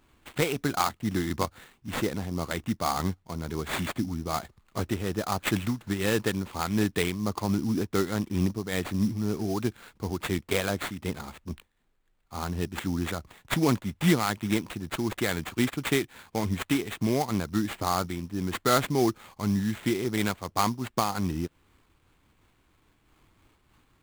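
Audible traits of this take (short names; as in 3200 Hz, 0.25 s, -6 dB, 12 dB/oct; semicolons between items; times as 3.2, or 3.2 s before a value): aliases and images of a low sample rate 5600 Hz, jitter 20%; noise-modulated level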